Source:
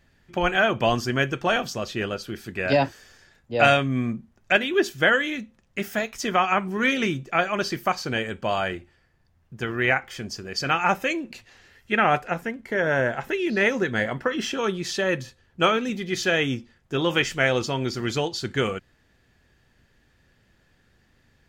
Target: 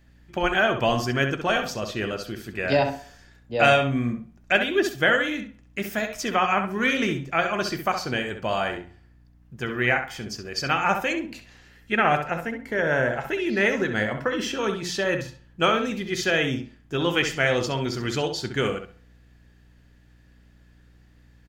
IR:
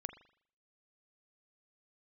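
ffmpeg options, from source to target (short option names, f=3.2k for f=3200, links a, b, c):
-filter_complex "[0:a]bandreject=f=89.25:t=h:w=4,bandreject=f=178.5:t=h:w=4,bandreject=f=267.75:t=h:w=4,bandreject=f=357:t=h:w=4,bandreject=f=446.25:t=h:w=4,bandreject=f=535.5:t=h:w=4,bandreject=f=624.75:t=h:w=4,bandreject=f=714:t=h:w=4,bandreject=f=803.25:t=h:w=4,bandreject=f=892.5:t=h:w=4,bandreject=f=981.75:t=h:w=4,bandreject=f=1.071k:t=h:w=4,bandreject=f=1.16025k:t=h:w=4,bandreject=f=1.2495k:t=h:w=4,bandreject=f=1.33875k:t=h:w=4,bandreject=f=1.428k:t=h:w=4,aeval=exprs='val(0)+0.00158*(sin(2*PI*60*n/s)+sin(2*PI*2*60*n/s)/2+sin(2*PI*3*60*n/s)/3+sin(2*PI*4*60*n/s)/4+sin(2*PI*5*60*n/s)/5)':c=same,asplit=2[a][b];[b]adelay=66,lowpass=f=3.4k:p=1,volume=-7dB,asplit=2[c][d];[d]adelay=66,lowpass=f=3.4k:p=1,volume=0.25,asplit=2[e][f];[f]adelay=66,lowpass=f=3.4k:p=1,volume=0.25[g];[a][c][e][g]amix=inputs=4:normalize=0,asplit=2[h][i];[1:a]atrim=start_sample=2205,highshelf=f=10k:g=11.5[j];[i][j]afir=irnorm=-1:irlink=0,volume=-7.5dB[k];[h][k]amix=inputs=2:normalize=0,volume=-3dB"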